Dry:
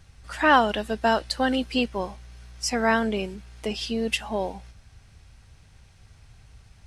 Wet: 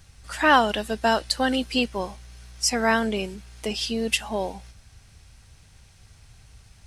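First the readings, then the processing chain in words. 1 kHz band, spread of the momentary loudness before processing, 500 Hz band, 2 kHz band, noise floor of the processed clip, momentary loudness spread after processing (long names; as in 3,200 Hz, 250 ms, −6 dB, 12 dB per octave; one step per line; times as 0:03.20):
+0.5 dB, 15 LU, 0.0 dB, +1.0 dB, −54 dBFS, 15 LU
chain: high-shelf EQ 4,500 Hz +8.5 dB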